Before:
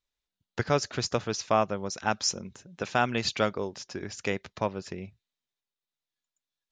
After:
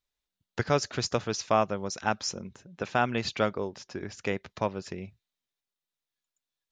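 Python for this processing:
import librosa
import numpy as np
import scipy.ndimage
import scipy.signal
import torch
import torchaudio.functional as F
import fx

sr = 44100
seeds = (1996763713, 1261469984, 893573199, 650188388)

y = fx.high_shelf(x, sr, hz=4200.0, db=-8.0, at=(2.09, 4.5))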